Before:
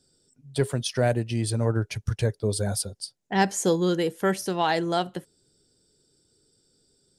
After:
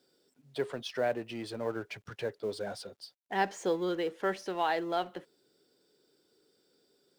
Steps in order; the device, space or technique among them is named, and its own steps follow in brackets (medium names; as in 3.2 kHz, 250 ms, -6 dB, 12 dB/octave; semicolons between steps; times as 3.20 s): phone line with mismatched companding (band-pass 340–3200 Hz; companding laws mixed up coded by mu); trim -6 dB